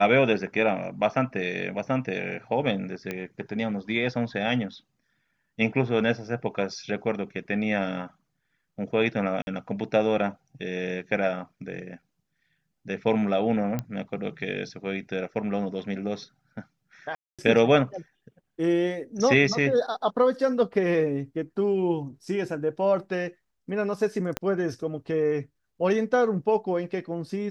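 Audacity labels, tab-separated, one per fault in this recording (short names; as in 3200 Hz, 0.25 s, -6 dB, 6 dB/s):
3.110000	3.110000	pop -17 dBFS
9.420000	9.470000	gap 51 ms
13.790000	13.790000	pop -16 dBFS
17.150000	17.390000	gap 0.236 s
24.370000	24.370000	pop -12 dBFS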